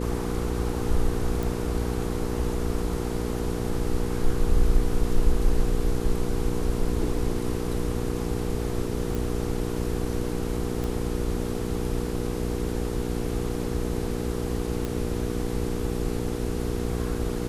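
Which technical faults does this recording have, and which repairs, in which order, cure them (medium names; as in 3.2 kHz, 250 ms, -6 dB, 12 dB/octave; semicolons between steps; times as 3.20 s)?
hum 60 Hz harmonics 8 -30 dBFS
1.43 s: pop
9.15 s: pop
10.84 s: pop
14.85 s: pop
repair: de-click; de-hum 60 Hz, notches 8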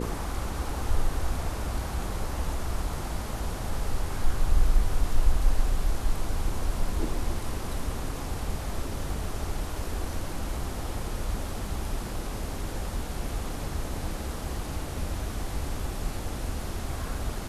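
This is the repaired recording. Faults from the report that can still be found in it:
nothing left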